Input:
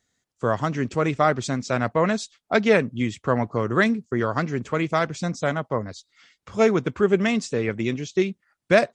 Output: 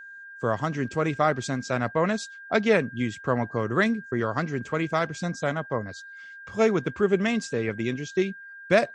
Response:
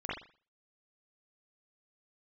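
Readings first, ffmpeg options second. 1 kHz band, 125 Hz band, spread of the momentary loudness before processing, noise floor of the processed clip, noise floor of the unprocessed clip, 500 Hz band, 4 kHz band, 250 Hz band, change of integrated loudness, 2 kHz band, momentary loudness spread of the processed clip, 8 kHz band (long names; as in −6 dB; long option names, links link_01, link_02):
−3.0 dB, −3.0 dB, 7 LU, −44 dBFS, −79 dBFS, −3.0 dB, −3.0 dB, −3.0 dB, −3.0 dB, −2.0 dB, 8 LU, −3.0 dB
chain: -af "aeval=exprs='val(0)+0.0126*sin(2*PI*1600*n/s)':channel_layout=same,volume=-3dB"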